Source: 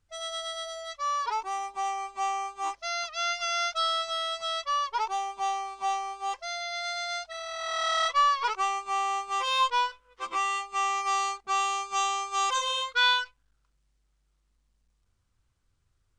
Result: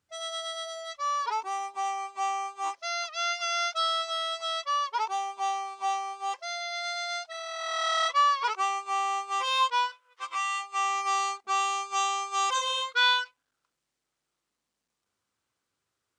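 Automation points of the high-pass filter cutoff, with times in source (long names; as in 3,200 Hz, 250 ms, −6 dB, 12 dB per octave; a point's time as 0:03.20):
0:01.31 150 Hz
0:01.83 340 Hz
0:09.29 340 Hz
0:10.42 1,100 Hz
0:11.10 280 Hz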